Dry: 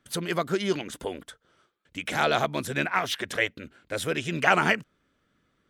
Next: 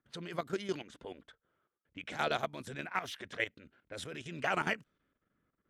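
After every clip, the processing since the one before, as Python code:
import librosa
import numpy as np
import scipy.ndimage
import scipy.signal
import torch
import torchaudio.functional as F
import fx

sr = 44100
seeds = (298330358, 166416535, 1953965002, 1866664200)

y = fx.env_lowpass(x, sr, base_hz=1800.0, full_db=-24.0)
y = fx.level_steps(y, sr, step_db=12)
y = y * 10.0 ** (-7.0 / 20.0)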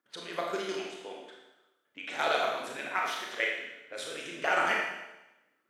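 y = scipy.signal.sosfilt(scipy.signal.butter(2, 380.0, 'highpass', fs=sr, output='sos'), x)
y = fx.rev_schroeder(y, sr, rt60_s=0.98, comb_ms=26, drr_db=-1.5)
y = y * 10.0 ** (2.5 / 20.0)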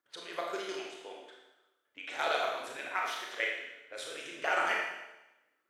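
y = fx.peak_eq(x, sr, hz=190.0, db=-11.0, octaves=0.88)
y = y * 10.0 ** (-2.5 / 20.0)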